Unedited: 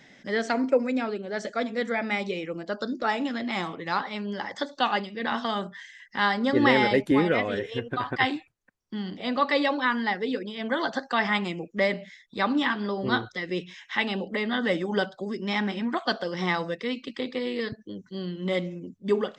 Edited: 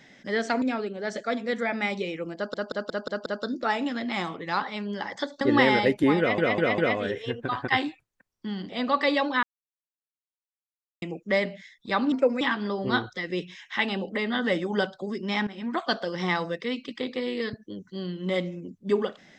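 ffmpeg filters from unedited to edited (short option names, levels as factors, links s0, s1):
-filter_complex "[0:a]asplit=16[s0][s1][s2][s3][s4][s5][s6][s7][s8][s9][s10][s11][s12][s13][s14][s15];[s0]atrim=end=0.622[s16];[s1]atrim=start=0.908:end=2.832[s17];[s2]atrim=start=2.648:end=2.832[s18];[s3]atrim=start=2.648:end=2.832[s19];[s4]atrim=start=2.648:end=2.832[s20];[s5]atrim=start=2.648:end=2.832[s21];[s6]atrim=start=2.648:end=4.802[s22];[s7]atrim=start=6.488:end=7.462[s23];[s8]atrim=start=7.258:end=7.462[s24];[s9]atrim=start=7.258:end=7.462[s25];[s10]atrim=start=7.258:end=9.91,asetpts=PTS-STARTPTS,afade=t=out:st=2.648:d=0.004:c=hsin[s26];[s11]atrim=start=9.91:end=11.5,asetpts=PTS-STARTPTS,volume=0[s27];[s12]atrim=start=11.5:end=12.602,asetpts=PTS-STARTPTS,afade=t=in:d=0.004:c=hsin[s28];[s13]atrim=start=0.618:end=0.912[s29];[s14]atrim=start=12.598:end=15.66,asetpts=PTS-STARTPTS,afade=t=out:st=3.058:d=0.004:c=hsin:silence=0.158489[s30];[s15]atrim=start=15.66,asetpts=PTS-STARTPTS,afade=t=in:d=0.3:silence=0.158489[s31];[s16][s17]acrossfade=d=0.004:c1=hsin:c2=hsin[s32];[s32][s18]acrossfade=d=0.004:c1=hsin:c2=hsin[s33];[s33][s19]acrossfade=d=0.004:c1=hsin:c2=hsin[s34];[s34][s20]acrossfade=d=0.004:c1=hsin:c2=hsin[s35];[s35][s21]acrossfade=d=0.004:c1=hsin:c2=hsin[s36];[s36][s22]acrossfade=d=0.004:c1=hsin:c2=hsin[s37];[s37][s23]acrossfade=d=0.004:c1=hsin:c2=hsin[s38];[s38][s24]acrossfade=d=0.004:c1=hsin:c2=hsin[s39];[s39][s25]acrossfade=d=0.004:c1=hsin:c2=hsin[s40];[s26][s27][s28]concat=n=3:v=0:a=1[s41];[s40][s41]acrossfade=d=0.004:c1=hsin:c2=hsin[s42];[s42][s29]acrossfade=d=0.004:c1=hsin:c2=hsin[s43];[s30][s31]concat=n=2:v=0:a=1[s44];[s43][s44]acrossfade=d=0.004:c1=hsin:c2=hsin"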